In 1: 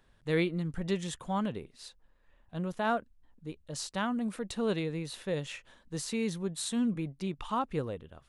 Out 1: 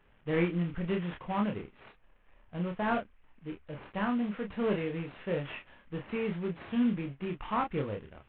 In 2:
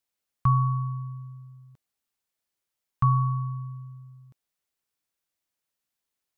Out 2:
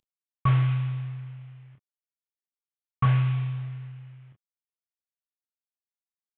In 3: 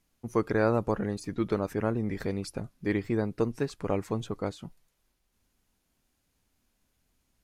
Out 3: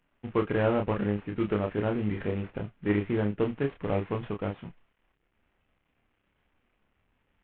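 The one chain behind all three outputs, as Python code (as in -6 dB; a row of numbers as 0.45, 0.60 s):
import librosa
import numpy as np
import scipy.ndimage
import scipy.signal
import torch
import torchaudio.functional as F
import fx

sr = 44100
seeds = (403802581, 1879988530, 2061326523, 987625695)

p1 = fx.cvsd(x, sr, bps=16000)
y = p1 + fx.room_early_taps(p1, sr, ms=(29, 39), db=(-4.5, -15.0), dry=0)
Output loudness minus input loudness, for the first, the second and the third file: +0.5, +0.5, +1.0 LU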